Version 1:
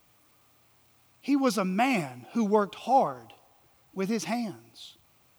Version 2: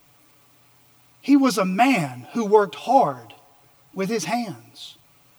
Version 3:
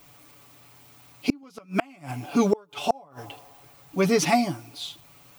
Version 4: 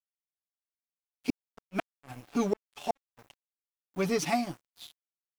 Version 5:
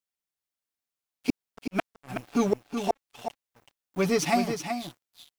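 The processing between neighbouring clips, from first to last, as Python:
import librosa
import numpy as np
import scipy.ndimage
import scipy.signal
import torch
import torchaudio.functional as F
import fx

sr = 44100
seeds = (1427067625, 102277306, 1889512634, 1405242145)

y1 = x + 0.76 * np.pad(x, (int(7.0 * sr / 1000.0), 0))[:len(x)]
y1 = y1 * 10.0 ** (5.0 / 20.0)
y2 = fx.gate_flip(y1, sr, shuts_db=-12.0, range_db=-34)
y2 = y2 * 10.0 ** (3.5 / 20.0)
y3 = np.sign(y2) * np.maximum(np.abs(y2) - 10.0 ** (-36.5 / 20.0), 0.0)
y3 = y3 * 10.0 ** (-6.5 / 20.0)
y4 = y3 + 10.0 ** (-7.5 / 20.0) * np.pad(y3, (int(375 * sr / 1000.0), 0))[:len(y3)]
y4 = y4 * 10.0 ** (4.0 / 20.0)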